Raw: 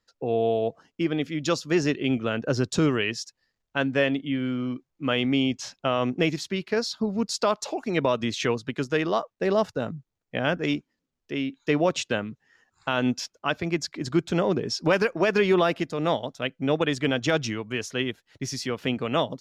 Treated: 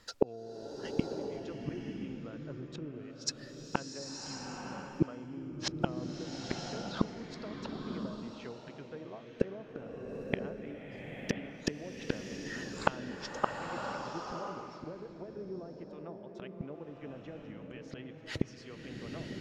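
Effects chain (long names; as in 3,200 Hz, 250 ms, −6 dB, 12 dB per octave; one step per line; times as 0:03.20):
treble cut that deepens with the level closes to 520 Hz, closed at −18.5 dBFS
gate with flip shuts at −31 dBFS, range −38 dB
slow-attack reverb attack 1,010 ms, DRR 2.5 dB
level +17 dB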